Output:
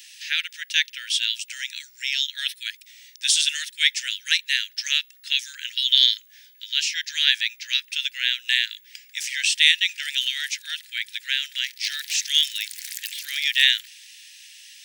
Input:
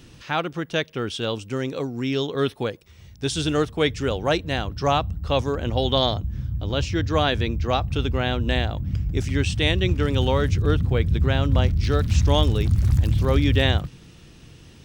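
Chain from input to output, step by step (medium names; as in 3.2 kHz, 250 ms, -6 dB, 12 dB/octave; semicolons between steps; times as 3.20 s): steep high-pass 1.7 kHz 72 dB/octave; tilt EQ +2.5 dB/octave; trim +5 dB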